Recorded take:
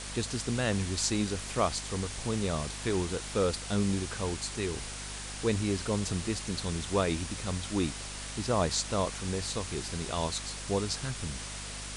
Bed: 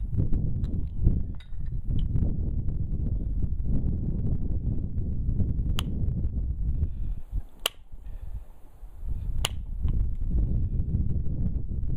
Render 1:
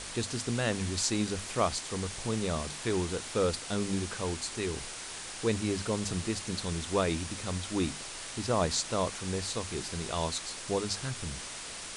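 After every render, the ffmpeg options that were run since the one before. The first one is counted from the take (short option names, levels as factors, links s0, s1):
-af "bandreject=f=50:t=h:w=6,bandreject=f=100:t=h:w=6,bandreject=f=150:t=h:w=6,bandreject=f=200:t=h:w=6,bandreject=f=250:t=h:w=6"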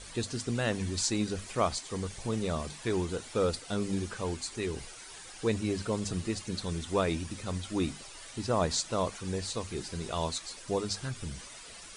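-af "afftdn=nr=11:nf=-42"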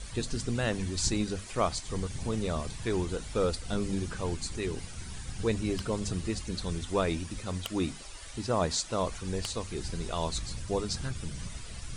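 -filter_complex "[1:a]volume=0.224[s0];[0:a][s0]amix=inputs=2:normalize=0"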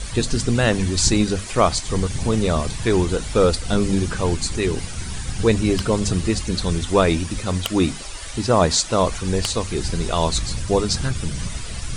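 -af "volume=3.98,alimiter=limit=0.708:level=0:latency=1"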